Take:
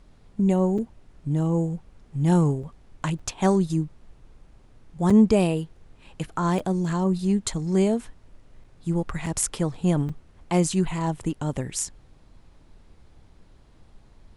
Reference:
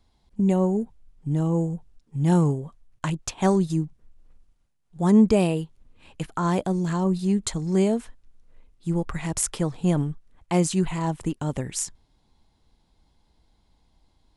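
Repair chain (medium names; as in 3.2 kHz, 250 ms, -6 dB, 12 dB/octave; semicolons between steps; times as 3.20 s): interpolate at 0.78/2.63/3.19/5.10/6.59/8.64/9.26/10.09 s, 4.9 ms; noise print and reduce 11 dB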